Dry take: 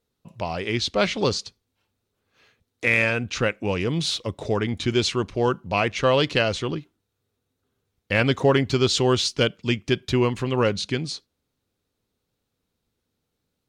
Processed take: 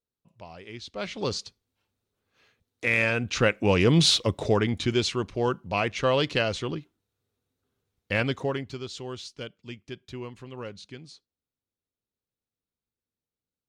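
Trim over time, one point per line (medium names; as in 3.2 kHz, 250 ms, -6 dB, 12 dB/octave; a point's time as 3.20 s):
0.84 s -16 dB
1.37 s -4.5 dB
2.86 s -4.5 dB
4.01 s +6 dB
5.08 s -4 dB
8.13 s -4 dB
8.86 s -17 dB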